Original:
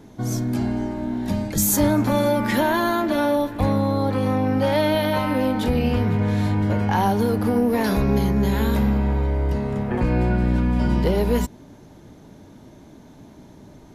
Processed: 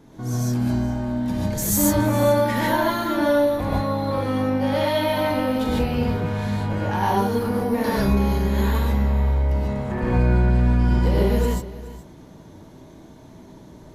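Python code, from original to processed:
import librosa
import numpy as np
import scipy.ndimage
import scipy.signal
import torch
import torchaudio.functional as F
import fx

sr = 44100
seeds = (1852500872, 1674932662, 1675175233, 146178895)

p1 = fx.peak_eq(x, sr, hz=1100.0, db=3.5, octaves=0.26)
p2 = 10.0 ** (-23.5 / 20.0) * np.tanh(p1 / 10.0 ** (-23.5 / 20.0))
p3 = p1 + (p2 * 10.0 ** (-8.0 / 20.0))
p4 = p3 + 10.0 ** (-17.0 / 20.0) * np.pad(p3, (int(420 * sr / 1000.0), 0))[:len(p3)]
p5 = fx.rev_gated(p4, sr, seeds[0], gate_ms=170, shape='rising', drr_db=-4.5)
y = p5 * 10.0 ** (-8.0 / 20.0)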